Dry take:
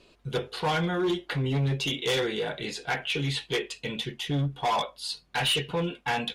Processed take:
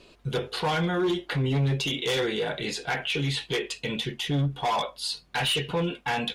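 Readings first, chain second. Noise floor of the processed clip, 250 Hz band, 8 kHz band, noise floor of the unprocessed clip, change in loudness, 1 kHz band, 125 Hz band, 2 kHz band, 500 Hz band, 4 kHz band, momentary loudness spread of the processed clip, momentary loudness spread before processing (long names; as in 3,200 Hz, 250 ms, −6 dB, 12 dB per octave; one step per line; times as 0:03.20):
−56 dBFS, +1.5 dB, +1.5 dB, −61 dBFS, +1.0 dB, +0.5 dB, +2.0 dB, +1.0 dB, +1.0 dB, +1.0 dB, 5 LU, 7 LU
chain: brickwall limiter −24.5 dBFS, peak gain reduction 5.5 dB
level +4.5 dB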